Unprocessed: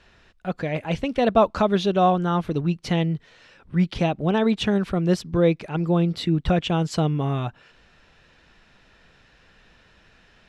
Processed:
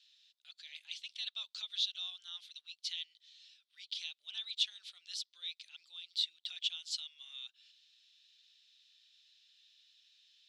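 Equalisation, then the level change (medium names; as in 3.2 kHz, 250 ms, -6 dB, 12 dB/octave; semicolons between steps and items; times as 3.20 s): ladder band-pass 4 kHz, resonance 60%; differentiator; peaking EQ 4.6 kHz +2 dB; +8.0 dB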